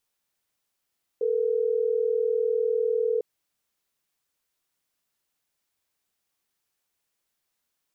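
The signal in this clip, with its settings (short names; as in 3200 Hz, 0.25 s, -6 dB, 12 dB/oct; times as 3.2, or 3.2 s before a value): call progress tone ringback tone, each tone -24.5 dBFS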